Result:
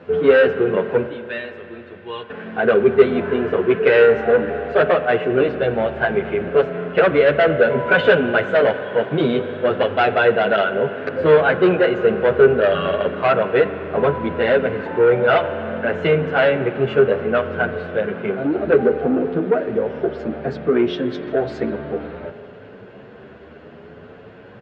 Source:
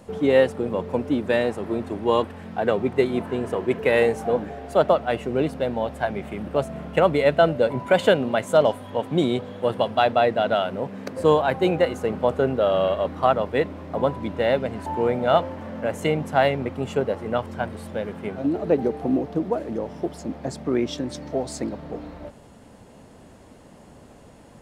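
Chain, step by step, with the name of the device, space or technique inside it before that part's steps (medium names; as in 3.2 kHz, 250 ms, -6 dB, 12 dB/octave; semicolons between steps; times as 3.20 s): 1.06–2.30 s: amplifier tone stack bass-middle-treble 5-5-5; barber-pole flanger into a guitar amplifier (endless flanger 9.5 ms +0.63 Hz; saturation -20 dBFS, distortion -10 dB; cabinet simulation 90–3500 Hz, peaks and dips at 280 Hz -4 dB, 420 Hz +9 dB, 890 Hz -5 dB, 1.5 kHz +10 dB, 2.6 kHz +3 dB); spring tank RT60 3.1 s, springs 39 ms, chirp 55 ms, DRR 11 dB; trim +8.5 dB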